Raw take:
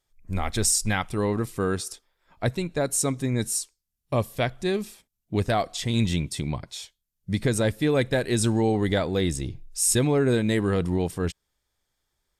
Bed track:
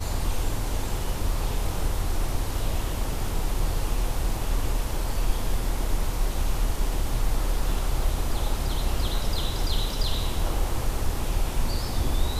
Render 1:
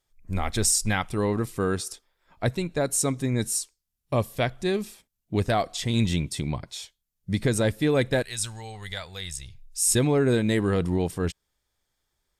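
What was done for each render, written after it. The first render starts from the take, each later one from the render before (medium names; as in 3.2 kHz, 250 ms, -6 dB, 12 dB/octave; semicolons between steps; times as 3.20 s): 8.22–9.87 s: amplifier tone stack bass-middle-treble 10-0-10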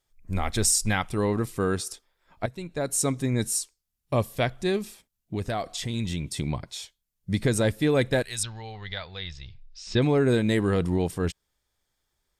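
2.46–3.06 s: fade in, from -14 dB; 4.78–6.37 s: compression 2:1, threshold -29 dBFS; 8.43–10.02 s: steep low-pass 4.9 kHz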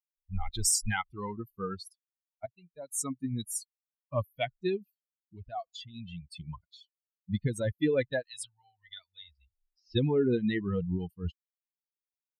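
expander on every frequency bin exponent 3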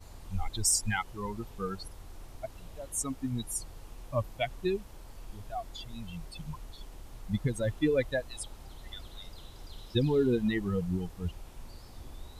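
add bed track -21 dB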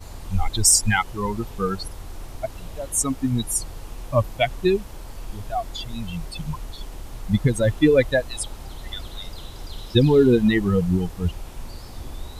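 trim +11 dB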